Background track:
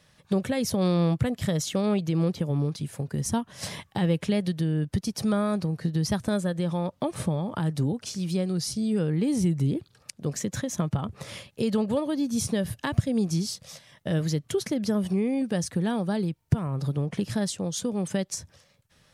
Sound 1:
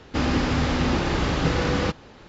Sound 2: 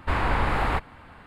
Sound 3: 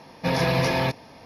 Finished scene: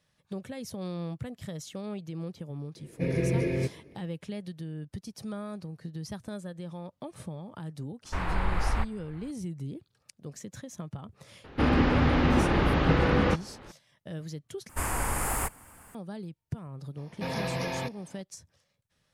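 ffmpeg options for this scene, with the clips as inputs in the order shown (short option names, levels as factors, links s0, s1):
-filter_complex "[3:a]asplit=2[s0][s1];[2:a]asplit=2[s2][s3];[0:a]volume=0.237[s4];[s0]firequalizer=gain_entry='entry(140,0);entry(250,-5);entry(360,7);entry(810,-26);entry(2200,-6);entry(3100,-19);entry(5300,-21);entry(8600,-1);entry(13000,-27)':delay=0.05:min_phase=1[s5];[s2]asubboost=boost=11.5:cutoff=92[s6];[1:a]lowpass=2800[s7];[s3]aexciter=amount=15.2:drive=8.8:freq=6200[s8];[s4]asplit=2[s9][s10];[s9]atrim=end=14.694[s11];[s8]atrim=end=1.26,asetpts=PTS-STARTPTS,volume=0.447[s12];[s10]atrim=start=15.946[s13];[s5]atrim=end=1.25,asetpts=PTS-STARTPTS,volume=0.794,afade=t=in:d=0.004:c=hsin,afade=t=out:st=1.246:d=0.004:c=hsin,adelay=2760[s14];[s6]atrim=end=1.26,asetpts=PTS-STARTPTS,volume=0.398,afade=t=in:d=0.004:c=hsin,afade=t=out:st=1.256:d=0.004:c=hsin,adelay=8050[s15];[s7]atrim=end=2.28,asetpts=PTS-STARTPTS,volume=0.944,afade=t=in:d=0.004:c=hsin,afade=t=out:st=2.276:d=0.004:c=hsin,adelay=11440[s16];[s1]atrim=end=1.25,asetpts=PTS-STARTPTS,volume=0.316,afade=t=in:d=0.004:c=hsin,afade=t=out:st=1.246:d=0.004:c=hsin,adelay=16970[s17];[s11][s12]acrossfade=d=0.004:c1=hsin:c2=hsin[s18];[s18][s13]acrossfade=d=0.004:c1=hsin:c2=hsin[s19];[s19][s14][s15][s16][s17]amix=inputs=5:normalize=0"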